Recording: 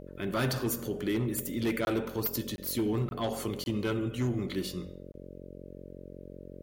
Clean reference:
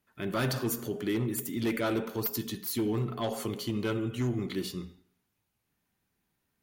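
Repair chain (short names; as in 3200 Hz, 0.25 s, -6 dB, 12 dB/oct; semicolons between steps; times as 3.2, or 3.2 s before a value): de-hum 45.4 Hz, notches 13; interpolate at 1.85/2.56/3.09/3.64/5.12, 21 ms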